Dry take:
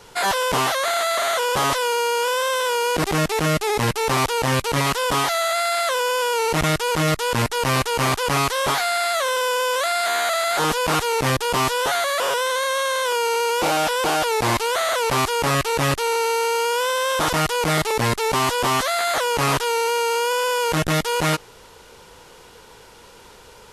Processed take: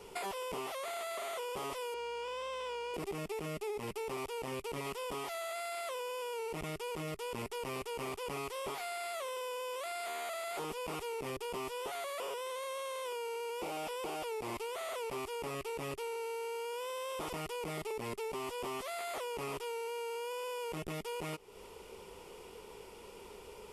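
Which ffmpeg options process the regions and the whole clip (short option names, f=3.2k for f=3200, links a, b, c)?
-filter_complex "[0:a]asettb=1/sr,asplit=3[a][b][c];[a]atrim=end=1.944[d];[b]atrim=start=1.94:end=2.94,asetpts=PTS-STARTPTS,afade=t=in:d=0.004:c=qsin,afade=t=out:st=0.996:d=0.004:c=qsin,highpass=430,lowpass=5.6k,aeval=exprs='val(0)+0.00398*(sin(2*PI*60*n/s)+sin(2*PI*2*60*n/s)/2+sin(2*PI*3*60*n/s)/3+sin(2*PI*4*60*n/s)/4+sin(2*PI*5*60*n/s)/5)':c=same[e];[c]atrim=start=2.936[f];[d][e]acrossfade=d=0.004:c1=hsin:c2=qsin[g];[g][f]acrossfade=d=0.004:c1=qsin:c2=hsin,equalizer=f=125:t=o:w=0.33:g=-7,equalizer=f=200:t=o:w=0.33:g=3,equalizer=f=400:t=o:w=0.33:g=10,equalizer=f=1.6k:t=o:w=0.33:g=-12,equalizer=f=2.5k:t=o:w=0.33:g=4,equalizer=f=4k:t=o:w=0.33:g=-8,equalizer=f=6.3k:t=o:w=0.33:g=-6,acompressor=threshold=-31dB:ratio=6,volume=-7dB"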